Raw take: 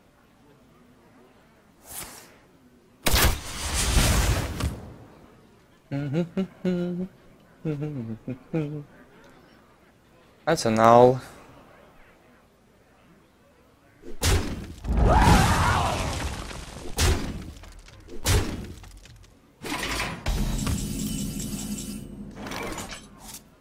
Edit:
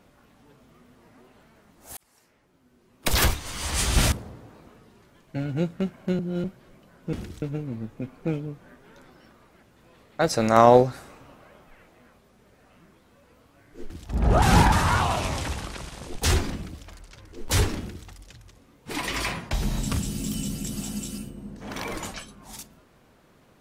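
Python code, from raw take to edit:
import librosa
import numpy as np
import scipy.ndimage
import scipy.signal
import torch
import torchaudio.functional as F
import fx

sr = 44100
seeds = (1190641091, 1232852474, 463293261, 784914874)

y = fx.edit(x, sr, fx.fade_in_span(start_s=1.97, length_s=1.41),
    fx.cut(start_s=4.12, length_s=0.57),
    fx.reverse_span(start_s=6.76, length_s=0.25),
    fx.cut(start_s=14.18, length_s=0.47),
    fx.reverse_span(start_s=15.17, length_s=0.3),
    fx.duplicate(start_s=18.53, length_s=0.29, to_s=7.7), tone=tone)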